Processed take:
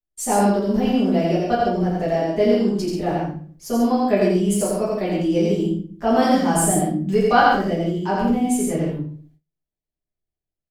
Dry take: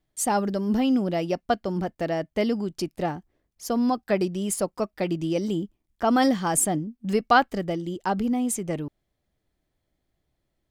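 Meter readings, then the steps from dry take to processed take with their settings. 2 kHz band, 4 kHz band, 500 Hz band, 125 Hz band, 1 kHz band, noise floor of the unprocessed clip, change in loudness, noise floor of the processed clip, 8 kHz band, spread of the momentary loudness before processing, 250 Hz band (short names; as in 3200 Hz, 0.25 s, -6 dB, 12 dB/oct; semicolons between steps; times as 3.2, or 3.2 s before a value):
+4.0 dB, +3.5 dB, +7.5 dB, +8.0 dB, +5.5 dB, -78 dBFS, +5.5 dB, under -85 dBFS, +2.5 dB, 10 LU, +6.0 dB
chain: loudspeakers at several distances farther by 29 m -2 dB, 47 m -6 dB; shoebox room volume 37 m³, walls mixed, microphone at 1.3 m; gate -45 dBFS, range -23 dB; gain -6 dB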